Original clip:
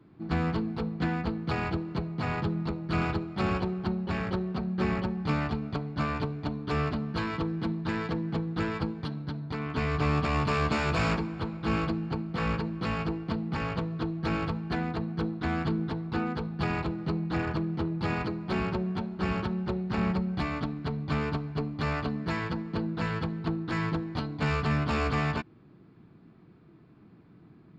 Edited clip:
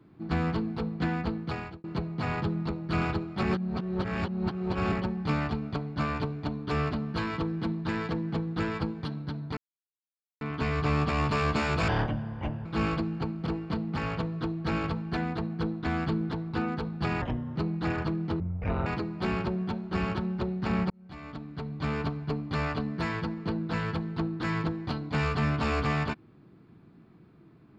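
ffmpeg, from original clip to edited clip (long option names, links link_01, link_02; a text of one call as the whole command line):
ffmpeg -i in.wav -filter_complex "[0:a]asplit=13[link_01][link_02][link_03][link_04][link_05][link_06][link_07][link_08][link_09][link_10][link_11][link_12][link_13];[link_01]atrim=end=1.84,asetpts=PTS-STARTPTS,afade=type=out:start_time=1.36:duration=0.48[link_14];[link_02]atrim=start=1.84:end=3.432,asetpts=PTS-STARTPTS,afade=type=in:duration=0.004:curve=hsin[link_15];[link_03]atrim=start=3.428:end=4.922,asetpts=PTS-STARTPTS,areverse[link_16];[link_04]atrim=start=4.918:end=9.57,asetpts=PTS-STARTPTS,afade=type=out:start_time=4.648:duration=0.004:curve=hsin,apad=pad_dur=0.84[link_17];[link_05]atrim=start=9.57:end=11.044,asetpts=PTS-STARTPTS,afade=type=in:duration=0.004:curve=hsin[link_18];[link_06]atrim=start=11.04:end=11.56,asetpts=PTS-STARTPTS,asetrate=29547,aresample=44100[link_19];[link_07]atrim=start=11.556:end=12.372[link_20];[link_08]atrim=start=13.048:end=16.804[link_21];[link_09]atrim=start=16.8:end=17.05,asetpts=PTS-STARTPTS,asetrate=32193,aresample=44100[link_22];[link_10]atrim=start=17.046:end=17.894[link_23];[link_11]atrim=start=17.89:end=18.14,asetpts=PTS-STARTPTS,asetrate=23814,aresample=44100[link_24];[link_12]atrim=start=18.136:end=20.18,asetpts=PTS-STARTPTS,afade=type=out:start_time=2.04:duration=0.004:curve=hsin[link_25];[link_13]atrim=start=20.18,asetpts=PTS-STARTPTS,afade=type=in:duration=1.17[link_26];[link_14][link_15]concat=n=2:v=0:a=1[link_27];[link_27][link_16]acrossfade=duration=0.004:curve1=hsin:curve2=hsin[link_28];[link_17][link_18]concat=n=2:v=0:a=1[link_29];[link_28][link_29]acrossfade=duration=0.004:curve1=hsin:curve2=hsin[link_30];[link_30][link_19]acrossfade=duration=0.004:curve1=hsin:curve2=hsin[link_31];[link_31][link_20]acrossfade=duration=0.004:curve1=hsin:curve2=hsin[link_32];[link_32][link_21]acrossfade=duration=0.004:curve1=hsin:curve2=hsin[link_33];[link_33][link_22]acrossfade=duration=0.004:curve1=hsin:curve2=hsin[link_34];[link_34][link_23]acrossfade=duration=0.004:curve1=hsin:curve2=hsin[link_35];[link_35][link_24]acrossfade=duration=0.004:curve1=hsin:curve2=hsin[link_36];[link_25][link_26]concat=n=2:v=0:a=1[link_37];[link_36][link_37]acrossfade=duration=0.004:curve1=hsin:curve2=hsin" out.wav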